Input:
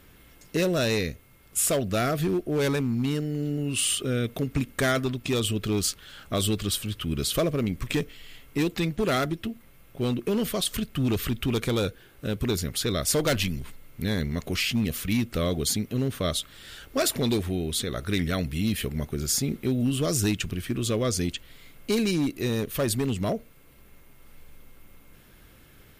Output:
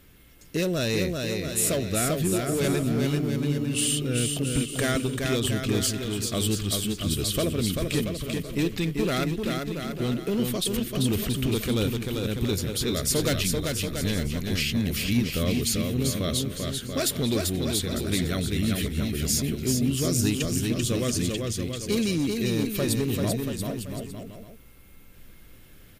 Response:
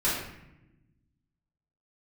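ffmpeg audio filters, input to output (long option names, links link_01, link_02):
-filter_complex "[0:a]equalizer=frequency=970:width=0.66:gain=-5,asplit=2[link_01][link_02];[link_02]aecho=0:1:390|682.5|901.9|1066|1190:0.631|0.398|0.251|0.158|0.1[link_03];[link_01][link_03]amix=inputs=2:normalize=0"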